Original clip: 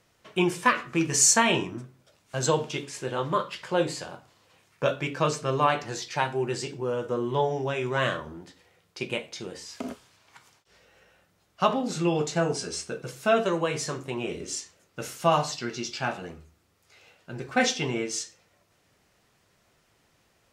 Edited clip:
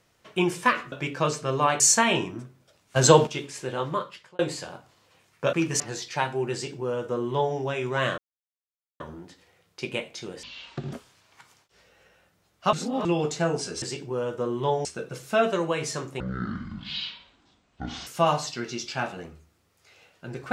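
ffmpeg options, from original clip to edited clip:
-filter_complex "[0:a]asplit=17[a][b][c][d][e][f][g][h][i][j][k][l][m][n][o][p][q];[a]atrim=end=0.922[r];[b]atrim=start=4.918:end=5.802[s];[c]atrim=start=1.188:end=2.352[t];[d]atrim=start=2.348:end=2.662,asetpts=PTS-STARTPTS,volume=8.5dB[u];[e]atrim=start=2.658:end=3.78,asetpts=PTS-STARTPTS,afade=t=out:st=0.562:d=0.56[v];[f]atrim=start=3.78:end=4.922,asetpts=PTS-STARTPTS,afade=t=in:d=0.004:c=hsin[w];[g]atrim=start=0.918:end=1.192[x];[h]atrim=start=5.798:end=8.18,asetpts=PTS-STARTPTS,afade=t=out:st=2.378:d=0.004:c=hsin,apad=pad_dur=0.82[y];[i]atrim=start=8.18:end=9.614,asetpts=PTS-STARTPTS,afade=t=in:d=0.004:c=hsin[z];[j]atrim=start=9.61:end=9.89,asetpts=PTS-STARTPTS,asetrate=24696,aresample=44100[aa];[k]atrim=start=9.886:end=11.692[ab];[l]atrim=start=11.688:end=12.012,asetpts=PTS-STARTPTS,areverse[ac];[m]atrim=start=12.008:end=12.782[ad];[n]atrim=start=6.528:end=7.562[ae];[o]atrim=start=12.778:end=14.134[af];[p]atrim=start=14.13:end=15.12,asetpts=PTS-STARTPTS,asetrate=23373,aresample=44100,atrim=end_sample=82375,asetpts=PTS-STARTPTS[ag];[q]atrim=start=15.116[ah];[r][s]acrossfade=d=0.004:c1=hsin:c2=hsin[ai];[ai][t]acrossfade=d=0.004:c1=hsin:c2=hsin[aj];[aj][u]acrossfade=d=0.004:c1=hsin:c2=hsin[ak];[v][w]concat=n=2:v=0:a=1[al];[ak][al]acrossfade=d=0.004:c1=hsin:c2=hsin[am];[am][x]acrossfade=d=0.004:c1=hsin:c2=hsin[an];[y][z]concat=n=2:v=0:a=1[ao];[an][ao]acrossfade=d=0.004:c1=hsin:c2=hsin[ap];[ap][aa]acrossfade=d=0.004:c1=hsin:c2=hsin[aq];[aq][ab]acrossfade=d=0.004:c1=hsin:c2=hsin[ar];[ar][ac]acrossfade=d=0.004:c1=hsin:c2=hsin[as];[as][ad]acrossfade=d=0.004:c1=hsin:c2=hsin[at];[at][ae]acrossfade=d=0.004:c1=hsin:c2=hsin[au];[au][af]acrossfade=d=0.004:c1=hsin:c2=hsin[av];[av][ag]acrossfade=d=0.004:c1=hsin:c2=hsin[aw];[aw][ah]acrossfade=d=0.004:c1=hsin:c2=hsin"

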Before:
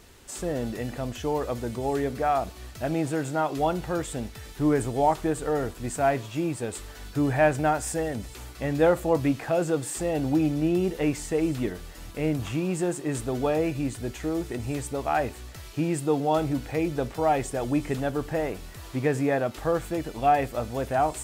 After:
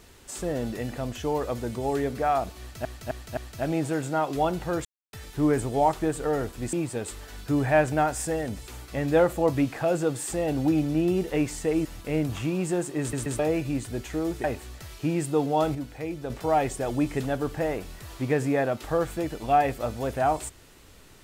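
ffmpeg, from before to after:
-filter_complex "[0:a]asplit=14[a][b][c][d][e][f][g][h][i][j][k][l][m][n];[a]atrim=end=2.852[o];[b]atrim=start=2.588:end=2.852[p];[c]atrim=start=2.588:end=2.852[q];[d]atrim=start=2.588:end=4.07,asetpts=PTS-STARTPTS,afade=t=out:st=1.478:d=0.004:c=hsin[r];[e]atrim=start=4.07:end=4.35,asetpts=PTS-STARTPTS,volume=0[s];[f]atrim=start=4.35:end=5.952,asetpts=PTS-STARTPTS,afade=t=in:d=0.004:c=hsin[t];[g]atrim=start=6.398:end=11.522[u];[h]atrim=start=11.948:end=13.232[v];[i]atrim=start=13.098:end=13.232[w];[j]atrim=start=13.098:end=13.232[x];[k]atrim=start=13.488:end=14.542[y];[l]atrim=start=15.178:end=16.492[z];[m]atrim=start=16.488:end=17.042,asetpts=PTS-STARTPTS,volume=-6.5dB[aa];[n]atrim=start=17.038[ab];[o][p]acrossfade=d=0.004:c1=hsin:c2=hsin[ac];[ac][q]acrossfade=d=0.004:c1=hsin:c2=hsin[ad];[r][s][t]concat=n=3:v=0:a=1[ae];[ad][ae]acrossfade=d=0.004:c1=hsin:c2=hsin[af];[af][u]acrossfade=d=0.004:c1=hsin:c2=hsin[ag];[ag][v]acrossfade=d=0.004:c1=hsin:c2=hsin[ah];[ah][w]acrossfade=d=0.004:c1=hsin:c2=hsin[ai];[ai][x]acrossfade=d=0.004:c1=hsin:c2=hsin[aj];[aj][y]acrossfade=d=0.004:c1=hsin:c2=hsin[ak];[ak][z]acrossfade=d=0.004:c1=hsin:c2=hsin[al];[al][aa]acrossfade=d=0.004:c1=hsin:c2=hsin[am];[am][ab]acrossfade=d=0.004:c1=hsin:c2=hsin"

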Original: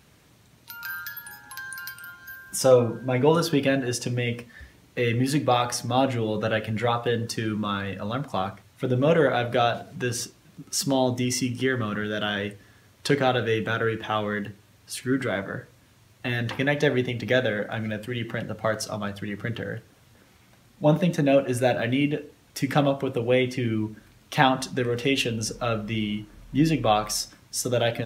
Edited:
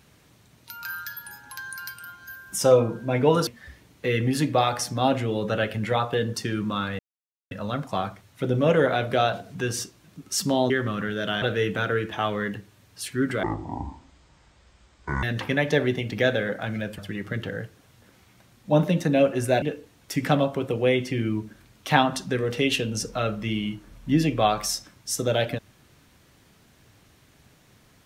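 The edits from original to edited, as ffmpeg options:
-filter_complex "[0:a]asplit=9[a][b][c][d][e][f][g][h][i];[a]atrim=end=3.472[j];[b]atrim=start=4.398:end=7.92,asetpts=PTS-STARTPTS,afade=t=out:st=3.518:d=0.004:c=hsin,apad=pad_dur=0.52[k];[c]atrim=start=7.92:end=11.112,asetpts=PTS-STARTPTS,afade=t=in:d=0.004:c=hsin[l];[d]atrim=start=11.638:end=12.362[m];[e]atrim=start=13.328:end=15.344[n];[f]atrim=start=15.34:end=16.33,asetpts=PTS-STARTPTS,asetrate=24255,aresample=44100[o];[g]atrim=start=16.326:end=18.082[p];[h]atrim=start=19.108:end=21.752[q];[i]atrim=start=22.078[r];[k][l]concat=n=2:v=0:a=1[s];[j][s]acrossfade=d=0.004:c1=hsin:c2=hsin[t];[t][m]acrossfade=d=0.004:c1=hsin:c2=hsin[u];[u][n]acrossfade=d=0.004:c1=hsin:c2=hsin[v];[v][o]acrossfade=d=0.004:c1=hsin:c2=hsin[w];[w][p]acrossfade=d=0.004:c1=hsin:c2=hsin[x];[x][q]acrossfade=d=0.004:c1=hsin:c2=hsin[y];[y][r]acrossfade=d=0.004:c1=hsin:c2=hsin"

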